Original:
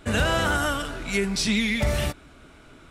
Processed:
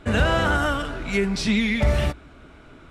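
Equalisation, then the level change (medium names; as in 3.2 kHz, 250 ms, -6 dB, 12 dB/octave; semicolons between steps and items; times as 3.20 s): low-pass 2.6 kHz 6 dB/octave; peaking EQ 62 Hz +4 dB 0.26 oct; +3.0 dB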